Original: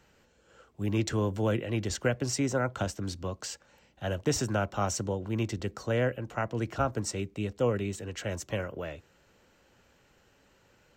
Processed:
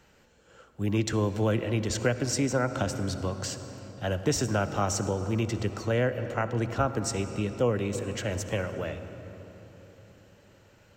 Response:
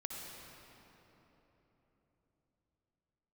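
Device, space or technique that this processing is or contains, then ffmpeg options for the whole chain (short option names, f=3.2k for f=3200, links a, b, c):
ducked reverb: -filter_complex "[0:a]asplit=3[a][b][c];[1:a]atrim=start_sample=2205[d];[b][d]afir=irnorm=-1:irlink=0[e];[c]apad=whole_len=483690[f];[e][f]sidechaincompress=threshold=-30dB:ratio=8:attack=39:release=222,volume=-3.5dB[g];[a][g]amix=inputs=2:normalize=0"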